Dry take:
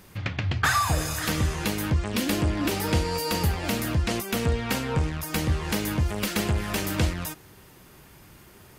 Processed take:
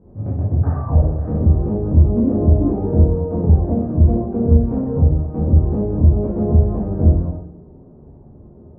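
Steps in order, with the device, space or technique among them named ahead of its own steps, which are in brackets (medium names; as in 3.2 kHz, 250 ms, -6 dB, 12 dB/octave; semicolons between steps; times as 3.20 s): next room (low-pass 640 Hz 24 dB/octave; reverberation RT60 0.60 s, pre-delay 13 ms, DRR -7 dB); trim +1 dB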